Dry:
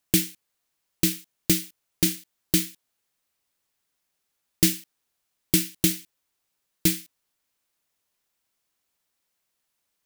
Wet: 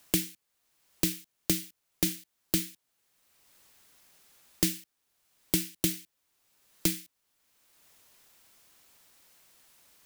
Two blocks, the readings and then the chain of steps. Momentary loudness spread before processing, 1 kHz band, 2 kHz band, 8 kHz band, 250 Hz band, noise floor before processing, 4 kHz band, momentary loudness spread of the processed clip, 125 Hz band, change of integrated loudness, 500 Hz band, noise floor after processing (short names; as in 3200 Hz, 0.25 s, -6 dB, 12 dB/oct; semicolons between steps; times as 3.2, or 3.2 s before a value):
13 LU, +0.5 dB, -6.0 dB, -6.0 dB, -6.5 dB, -79 dBFS, -6.0 dB, 12 LU, -7.0 dB, -6.5 dB, -4.5 dB, -80 dBFS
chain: three-band squash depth 70%; gain -4.5 dB